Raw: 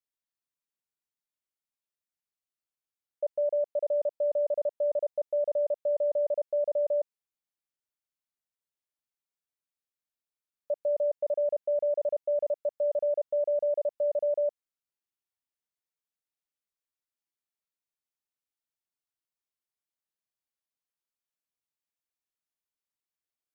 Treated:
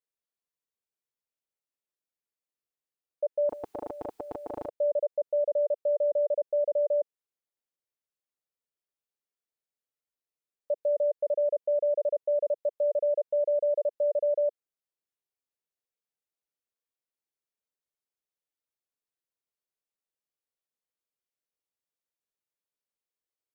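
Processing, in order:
parametric band 470 Hz +8.5 dB 0.95 octaves
0:03.49–0:04.69: every bin compressed towards the loudest bin 10 to 1
level −4.5 dB

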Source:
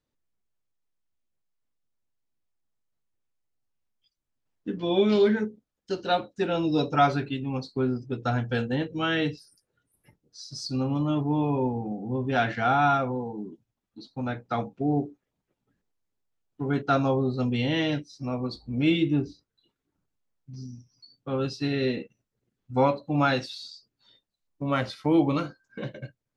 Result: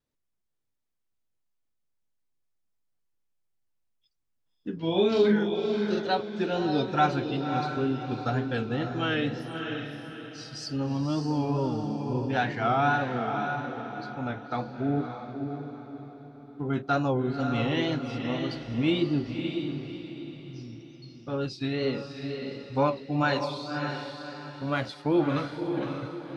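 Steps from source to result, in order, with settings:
tape wow and flutter 93 cents
0:04.78–0:06.02: double-tracking delay 43 ms −2 dB
feedback delay with all-pass diffusion 583 ms, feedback 41%, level −5.5 dB
level −2.5 dB

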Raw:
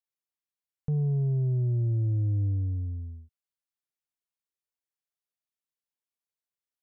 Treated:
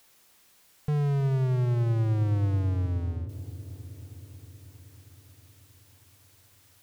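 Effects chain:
power curve on the samples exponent 0.5
delay with a low-pass on its return 317 ms, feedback 73%, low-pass 560 Hz, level −13.5 dB

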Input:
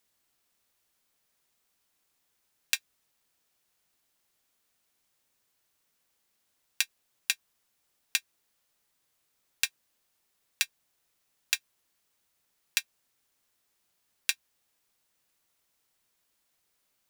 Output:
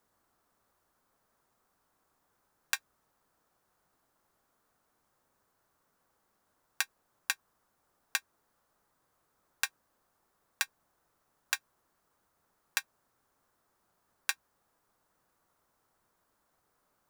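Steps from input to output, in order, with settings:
high shelf with overshoot 1,800 Hz −11.5 dB, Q 1.5
level +7.5 dB

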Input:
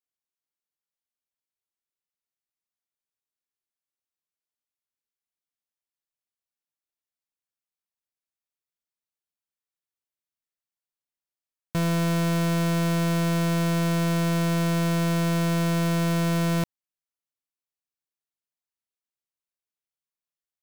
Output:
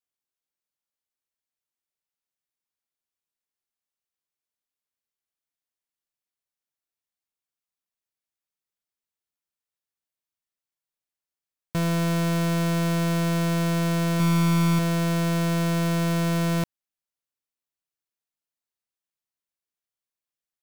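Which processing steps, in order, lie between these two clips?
0:14.18–0:14.79: double-tracking delay 17 ms −3 dB

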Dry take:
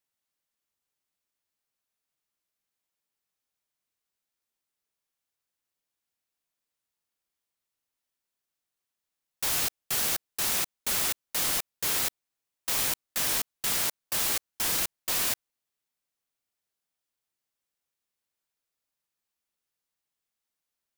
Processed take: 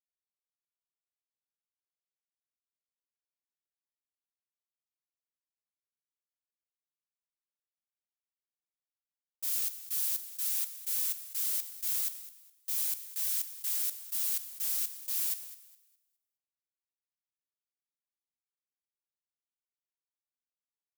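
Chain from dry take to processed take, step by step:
first-order pre-emphasis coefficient 0.97
dead-zone distortion −47.5 dBFS
parametric band 140 Hz −3.5 dB 0.65 octaves
repeating echo 207 ms, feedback 48%, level −11 dB
multiband upward and downward expander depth 70%
level −6.5 dB

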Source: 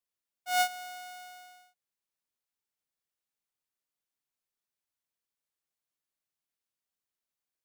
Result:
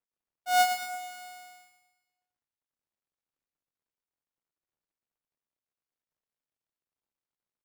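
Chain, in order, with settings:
running median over 25 samples
mains-hum notches 60/120/180/240 Hz
repeating echo 111 ms, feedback 50%, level −7.5 dB
level +6.5 dB

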